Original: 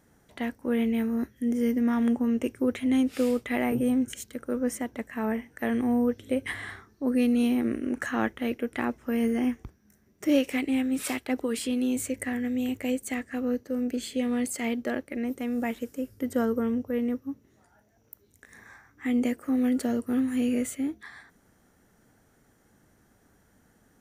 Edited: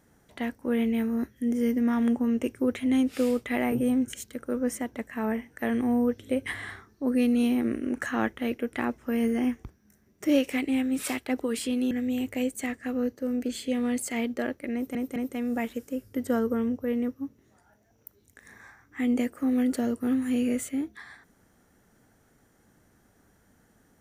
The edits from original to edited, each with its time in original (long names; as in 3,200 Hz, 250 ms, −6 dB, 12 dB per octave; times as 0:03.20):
0:11.91–0:12.39: remove
0:15.22: stutter 0.21 s, 3 plays